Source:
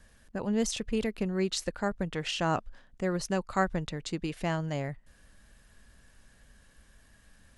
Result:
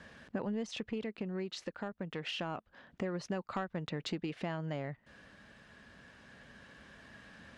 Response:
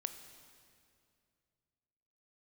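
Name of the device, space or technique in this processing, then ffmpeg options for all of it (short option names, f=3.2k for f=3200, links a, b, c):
AM radio: -af "highpass=140,lowpass=3.5k,acompressor=threshold=-43dB:ratio=8,asoftclip=type=tanh:threshold=-34.5dB,tremolo=f=0.27:d=0.3,volume=10dB"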